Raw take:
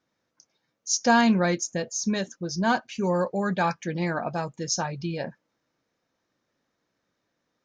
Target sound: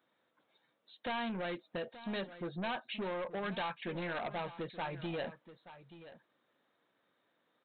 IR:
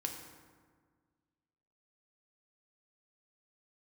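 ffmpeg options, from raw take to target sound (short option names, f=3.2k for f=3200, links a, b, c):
-filter_complex "[0:a]highpass=f=460:p=1,equalizer=f=2.7k:t=o:w=1.8:g=-10,acompressor=threshold=-35dB:ratio=6,aresample=8000,asoftclip=type=tanh:threshold=-38.5dB,aresample=44100,crystalizer=i=5.5:c=0,asplit=2[a][b];[b]aecho=0:1:878:0.178[c];[a][c]amix=inputs=2:normalize=0,volume=3.5dB"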